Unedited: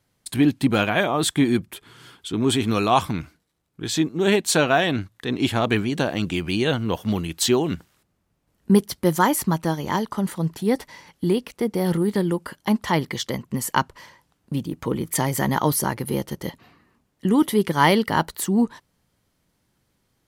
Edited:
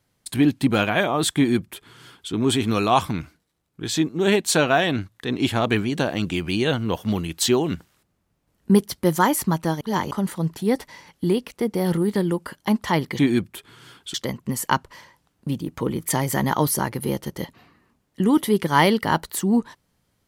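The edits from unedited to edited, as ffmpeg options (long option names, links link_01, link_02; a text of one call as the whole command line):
ffmpeg -i in.wav -filter_complex "[0:a]asplit=5[link_01][link_02][link_03][link_04][link_05];[link_01]atrim=end=9.812[link_06];[link_02]atrim=start=9.808:end=10.112,asetpts=PTS-STARTPTS,areverse[link_07];[link_03]atrim=start=10.108:end=13.192[link_08];[link_04]atrim=start=1.368:end=2.322[link_09];[link_05]atrim=start=13.188[link_10];[link_06][link_07]acrossfade=duration=0.004:curve1=hsin:curve2=hsin[link_11];[link_11][link_08]acrossfade=duration=0.004:curve1=hsin:curve2=hsin[link_12];[link_12][link_09]acrossfade=duration=0.004:curve1=hsin:curve2=hsin[link_13];[link_13][link_10]acrossfade=duration=0.004:curve1=hsin:curve2=hsin" out.wav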